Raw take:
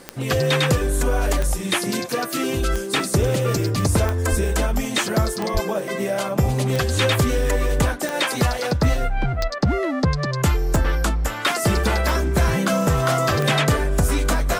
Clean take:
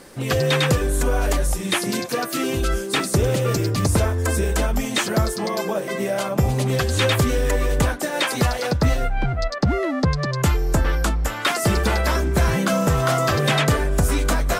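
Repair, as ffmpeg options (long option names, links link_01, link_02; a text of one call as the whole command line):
ffmpeg -i in.wav -filter_complex "[0:a]adeclick=threshold=4,asplit=3[link_01][link_02][link_03];[link_01]afade=type=out:start_time=4.3:duration=0.02[link_04];[link_02]highpass=frequency=140:width=0.5412,highpass=frequency=140:width=1.3066,afade=type=in:start_time=4.3:duration=0.02,afade=type=out:start_time=4.42:duration=0.02[link_05];[link_03]afade=type=in:start_time=4.42:duration=0.02[link_06];[link_04][link_05][link_06]amix=inputs=3:normalize=0,asplit=3[link_07][link_08][link_09];[link_07]afade=type=out:start_time=5.53:duration=0.02[link_10];[link_08]highpass=frequency=140:width=0.5412,highpass=frequency=140:width=1.3066,afade=type=in:start_time=5.53:duration=0.02,afade=type=out:start_time=5.65:duration=0.02[link_11];[link_09]afade=type=in:start_time=5.65:duration=0.02[link_12];[link_10][link_11][link_12]amix=inputs=3:normalize=0" out.wav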